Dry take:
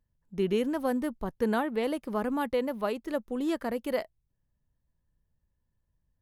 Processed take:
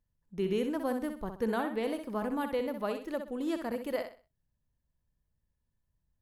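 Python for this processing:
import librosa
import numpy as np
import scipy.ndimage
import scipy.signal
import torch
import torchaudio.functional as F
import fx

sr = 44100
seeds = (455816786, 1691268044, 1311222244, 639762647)

y = fx.echo_feedback(x, sr, ms=63, feedback_pct=30, wet_db=-7.5)
y = y * 10.0 ** (-4.0 / 20.0)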